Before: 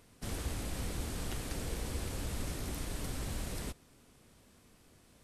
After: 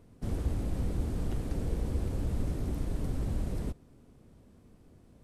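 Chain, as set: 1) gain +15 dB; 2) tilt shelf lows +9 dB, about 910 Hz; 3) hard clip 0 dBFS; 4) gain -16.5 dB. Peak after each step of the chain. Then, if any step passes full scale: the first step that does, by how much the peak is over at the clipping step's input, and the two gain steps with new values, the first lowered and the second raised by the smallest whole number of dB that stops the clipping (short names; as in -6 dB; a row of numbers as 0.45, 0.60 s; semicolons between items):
-9.5, -2.5, -2.5, -19.0 dBFS; no overload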